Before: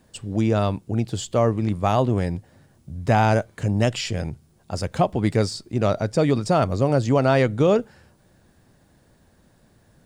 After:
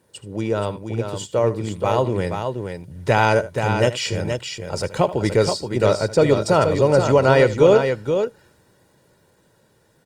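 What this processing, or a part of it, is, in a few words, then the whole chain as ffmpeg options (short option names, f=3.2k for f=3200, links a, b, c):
video call: -filter_complex "[0:a]aecho=1:1:2.1:0.53,asettb=1/sr,asplit=3[a][b][c];[a]atrim=end=2.194[d];[b]atrim=start=2.19:end=3.33,asetpts=PTS-STARTPTS,afade=t=in:d=0.004:c=qsin,afade=t=out:st=1.136:d=0.004:c=qsin,equalizer=f=3.1k:w=0.69:g=3.5[e];[c]atrim=start=3.326[f];[d][e]acrossfade=d=0.004:c1=hsin:c2=qsin[g];[g][f]acrossfade=d=0.004:c1=qsin:c2=hsin,highpass=140,aecho=1:1:77|476:0.168|0.473,dynaudnorm=f=260:g=17:m=14dB,volume=-1dB" -ar 48000 -c:a libopus -b:a 32k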